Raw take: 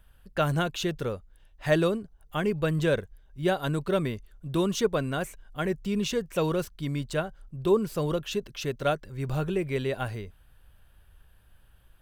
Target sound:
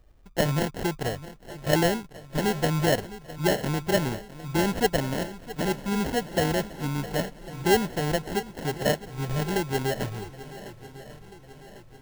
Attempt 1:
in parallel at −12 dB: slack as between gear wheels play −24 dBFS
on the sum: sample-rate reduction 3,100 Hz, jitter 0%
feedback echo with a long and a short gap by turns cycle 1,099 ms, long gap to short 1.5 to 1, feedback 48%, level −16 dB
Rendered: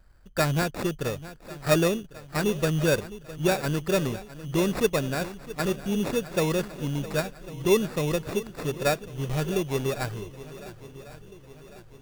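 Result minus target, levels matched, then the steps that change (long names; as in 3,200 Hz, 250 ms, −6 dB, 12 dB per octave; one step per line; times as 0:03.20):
sample-rate reduction: distortion −9 dB
change: sample-rate reduction 1,200 Hz, jitter 0%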